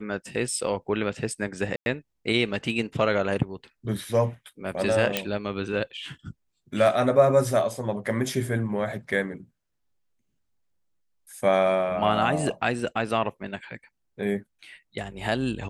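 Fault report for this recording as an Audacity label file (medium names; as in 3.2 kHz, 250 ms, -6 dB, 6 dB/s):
1.760000	1.860000	dropout 101 ms
5.170000	5.170000	pop -7 dBFS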